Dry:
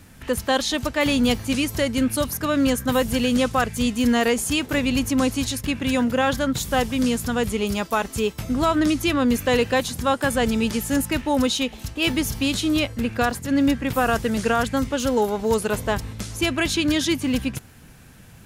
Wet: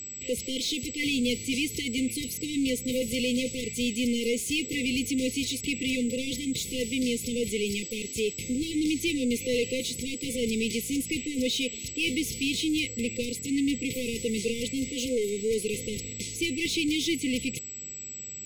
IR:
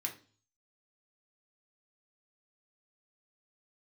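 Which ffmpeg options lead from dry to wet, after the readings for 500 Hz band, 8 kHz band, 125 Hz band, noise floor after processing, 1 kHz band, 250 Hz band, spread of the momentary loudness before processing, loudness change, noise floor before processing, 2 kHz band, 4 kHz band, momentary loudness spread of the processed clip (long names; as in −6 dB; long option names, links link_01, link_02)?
−8.0 dB, −1.5 dB, −11.0 dB, −40 dBFS, below −40 dB, −7.0 dB, 5 LU, −7.0 dB, −46 dBFS, −7.0 dB, −3.5 dB, 5 LU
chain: -filter_complex "[0:a]aeval=exprs='val(0)+0.0141*sin(2*PI*7800*n/s)':channel_layout=same,asplit=2[link_01][link_02];[link_02]highpass=frequency=720:poles=1,volume=21dB,asoftclip=type=tanh:threshold=-10dB[link_03];[link_01][link_03]amix=inputs=2:normalize=0,lowpass=frequency=3700:poles=1,volume=-6dB,afftfilt=real='re*(1-between(b*sr/4096,520,2000))':imag='im*(1-between(b*sr/4096,520,2000))':win_size=4096:overlap=0.75,volume=-9dB"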